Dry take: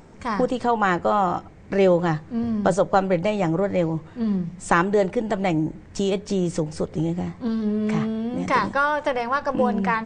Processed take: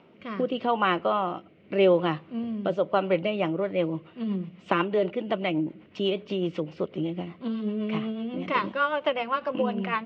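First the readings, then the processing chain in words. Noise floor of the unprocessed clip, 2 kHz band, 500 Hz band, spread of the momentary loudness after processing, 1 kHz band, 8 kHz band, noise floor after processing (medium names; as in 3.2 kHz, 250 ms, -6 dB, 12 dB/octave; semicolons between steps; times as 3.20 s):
-45 dBFS, -5.5 dB, -3.5 dB, 8 LU, -6.0 dB, under -25 dB, -55 dBFS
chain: rotary cabinet horn 0.85 Hz, later 8 Hz, at 2.98 s; cabinet simulation 270–3300 Hz, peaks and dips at 280 Hz -3 dB, 460 Hz -5 dB, 820 Hz -8 dB, 1.7 kHz -10 dB, 2.9 kHz +8 dB; trim +1.5 dB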